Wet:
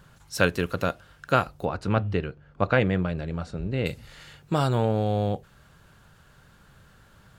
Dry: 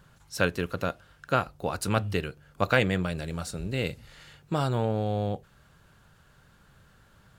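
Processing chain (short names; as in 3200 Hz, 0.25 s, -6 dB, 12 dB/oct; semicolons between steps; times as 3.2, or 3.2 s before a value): 1.65–3.86 tape spacing loss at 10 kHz 26 dB; gain +3.5 dB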